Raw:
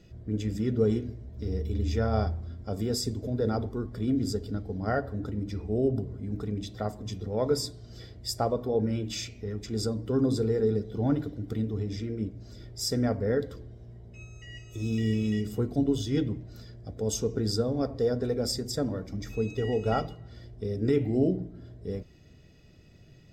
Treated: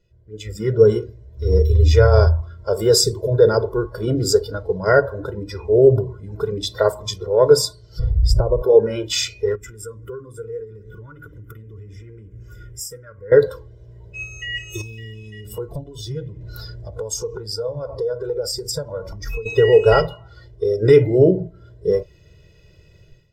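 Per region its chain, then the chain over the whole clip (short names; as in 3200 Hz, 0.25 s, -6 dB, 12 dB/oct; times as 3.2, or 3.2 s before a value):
7.99–8.62 tilt -4.5 dB/oct + compressor 16:1, threshold -27 dBFS
9.55–13.32 compressor 8:1, threshold -39 dBFS + fixed phaser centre 1800 Hz, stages 4
14.81–19.46 compressor 12:1, threshold -40 dBFS + low shelf 240 Hz +6 dB
whole clip: spectral noise reduction 14 dB; comb 2 ms, depth 94%; AGC gain up to 16.5 dB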